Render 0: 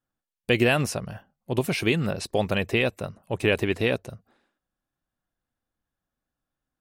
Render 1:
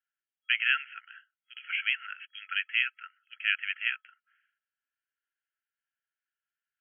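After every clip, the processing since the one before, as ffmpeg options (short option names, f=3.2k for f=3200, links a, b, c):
-af "afftfilt=real='re*between(b*sr/4096,1300,3300)':imag='im*between(b*sr/4096,1300,3300)':win_size=4096:overlap=0.75"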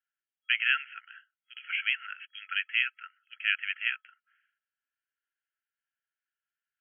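-af anull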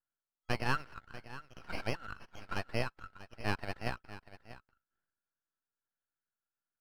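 -af "aeval=exprs='max(val(0),0)':c=same,highshelf=f=1.7k:t=q:w=1.5:g=-10,aecho=1:1:640:0.178,volume=1.5dB"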